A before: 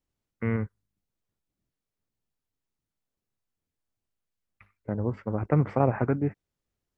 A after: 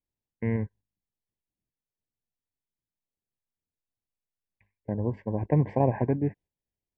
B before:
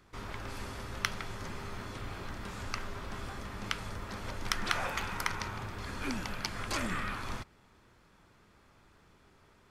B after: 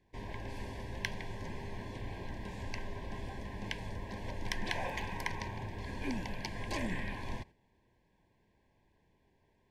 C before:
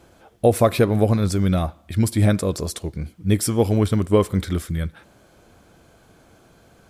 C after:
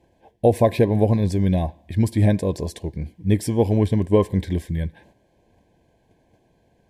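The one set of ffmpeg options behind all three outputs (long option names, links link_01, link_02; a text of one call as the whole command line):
ffmpeg -i in.wav -af "agate=range=-8dB:threshold=-50dB:ratio=16:detection=peak,asuperstop=centerf=1300:order=12:qfactor=2.6,highshelf=frequency=3300:gain=-10.5" out.wav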